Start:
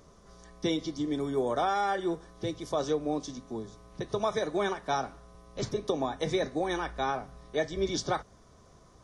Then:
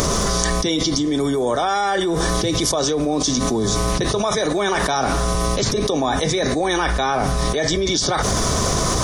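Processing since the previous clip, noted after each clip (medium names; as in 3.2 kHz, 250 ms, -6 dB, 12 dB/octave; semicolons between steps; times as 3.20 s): treble shelf 3.3 kHz +9.5 dB; level flattener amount 100%; trim +4.5 dB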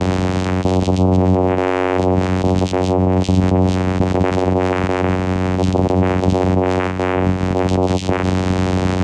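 dynamic bell 4.6 kHz, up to -6 dB, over -38 dBFS, Q 1.4; vocoder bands 4, saw 92.2 Hz; trim +5.5 dB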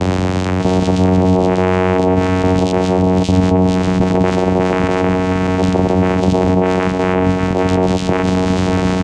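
delay 592 ms -5 dB; trim +1.5 dB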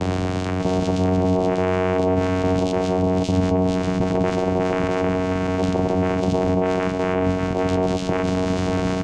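simulated room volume 430 m³, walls furnished, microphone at 0.51 m; trim -7 dB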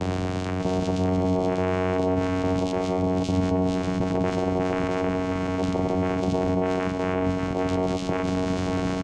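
delay 1081 ms -13.5 dB; trim -4 dB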